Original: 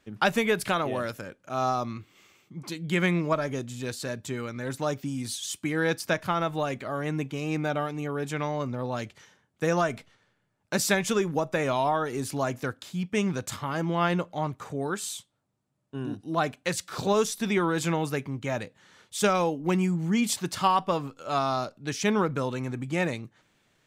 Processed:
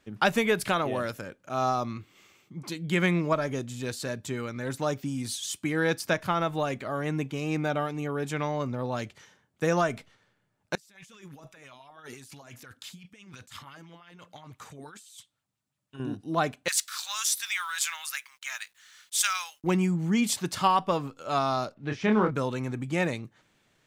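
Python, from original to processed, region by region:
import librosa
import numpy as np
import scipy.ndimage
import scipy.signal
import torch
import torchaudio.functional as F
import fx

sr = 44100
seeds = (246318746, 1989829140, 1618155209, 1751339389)

y = fx.chain(x, sr, fx.tone_stack(knobs='5-5-5'),
    fx.over_compress(threshold_db=-51.0, ratio=-1.0),
    fx.bell_lfo(hz=5.9, low_hz=230.0, high_hz=3200.0, db=9), at=(10.75, 16.0))
y = fx.chain(y, sr, fx.cheby2_highpass(hz=380.0, order=4, stop_db=60),
    fx.high_shelf(hz=4000.0, db=9.5),
    fx.quant_companded(bits=6), at=(16.68, 19.64))
y = fx.chain(y, sr, fx.block_float(bits=5),
    fx.lowpass(hz=2400.0, slope=12),
    fx.doubler(ms=28.0, db=-5.5), at=(21.74, 22.31))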